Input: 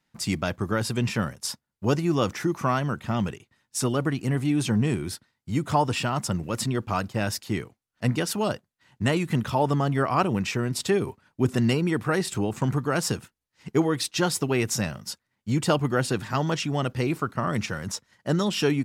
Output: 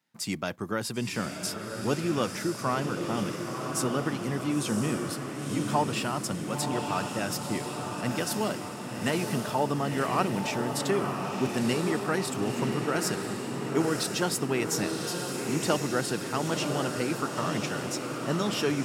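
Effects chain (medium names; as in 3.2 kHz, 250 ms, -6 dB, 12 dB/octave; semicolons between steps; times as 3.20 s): high-pass 160 Hz 12 dB/octave; treble shelf 11 kHz +5.5 dB; echo that smears into a reverb 1000 ms, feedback 63%, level -4.5 dB; trim -4 dB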